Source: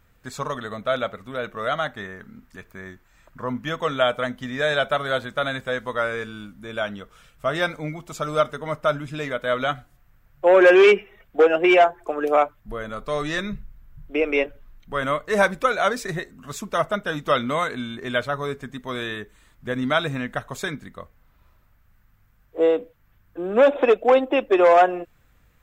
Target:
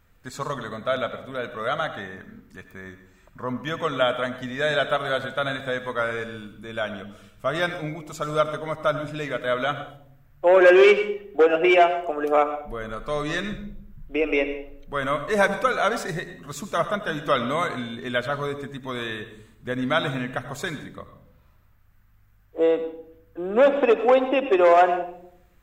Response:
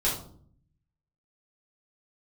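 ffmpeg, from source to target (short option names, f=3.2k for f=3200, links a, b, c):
-filter_complex "[0:a]asplit=2[a][b];[1:a]atrim=start_sample=2205,asetrate=32634,aresample=44100,adelay=79[c];[b][c]afir=irnorm=-1:irlink=0,volume=-22dB[d];[a][d]amix=inputs=2:normalize=0,volume=-1.5dB"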